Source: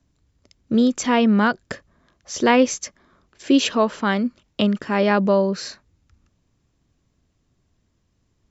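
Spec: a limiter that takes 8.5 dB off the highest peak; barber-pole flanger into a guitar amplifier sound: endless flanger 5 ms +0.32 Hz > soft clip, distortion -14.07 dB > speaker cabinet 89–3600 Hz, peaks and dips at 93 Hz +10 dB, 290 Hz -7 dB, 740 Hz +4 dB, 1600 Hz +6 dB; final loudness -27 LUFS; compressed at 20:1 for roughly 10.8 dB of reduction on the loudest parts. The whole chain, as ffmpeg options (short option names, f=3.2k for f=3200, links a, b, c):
-filter_complex "[0:a]acompressor=threshold=-21dB:ratio=20,alimiter=limit=-18.5dB:level=0:latency=1,asplit=2[a][b];[b]adelay=5,afreqshift=0.32[c];[a][c]amix=inputs=2:normalize=1,asoftclip=threshold=-27dB,highpass=89,equalizer=f=93:t=q:w=4:g=10,equalizer=f=290:t=q:w=4:g=-7,equalizer=f=740:t=q:w=4:g=4,equalizer=f=1.6k:t=q:w=4:g=6,lowpass=f=3.6k:w=0.5412,lowpass=f=3.6k:w=1.3066,volume=8dB"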